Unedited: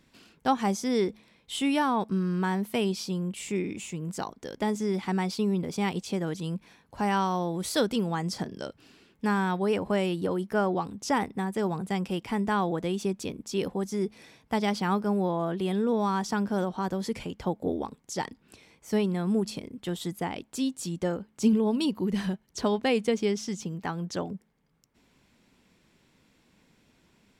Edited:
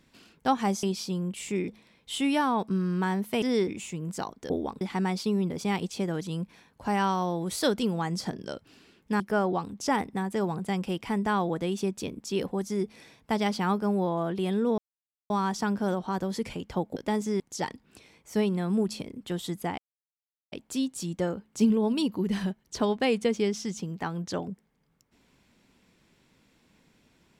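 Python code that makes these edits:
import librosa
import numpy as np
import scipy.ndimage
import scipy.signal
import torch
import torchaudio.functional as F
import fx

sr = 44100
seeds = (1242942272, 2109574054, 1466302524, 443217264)

y = fx.edit(x, sr, fx.swap(start_s=0.83, length_s=0.26, other_s=2.83, other_length_s=0.85),
    fx.swap(start_s=4.5, length_s=0.44, other_s=17.66, other_length_s=0.31),
    fx.cut(start_s=9.33, length_s=1.09),
    fx.insert_silence(at_s=16.0, length_s=0.52),
    fx.insert_silence(at_s=20.35, length_s=0.74), tone=tone)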